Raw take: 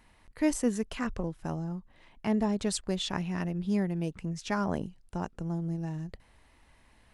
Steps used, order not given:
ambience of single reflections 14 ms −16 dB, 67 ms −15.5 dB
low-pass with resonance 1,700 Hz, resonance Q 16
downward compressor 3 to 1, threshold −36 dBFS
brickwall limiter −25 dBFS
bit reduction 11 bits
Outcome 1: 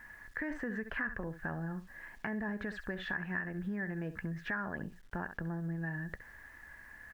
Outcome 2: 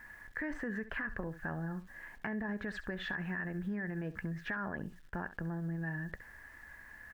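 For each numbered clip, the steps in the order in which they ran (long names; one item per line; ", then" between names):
ambience of single reflections, then brickwall limiter, then low-pass with resonance, then bit reduction, then downward compressor
low-pass with resonance, then bit reduction, then brickwall limiter, then ambience of single reflections, then downward compressor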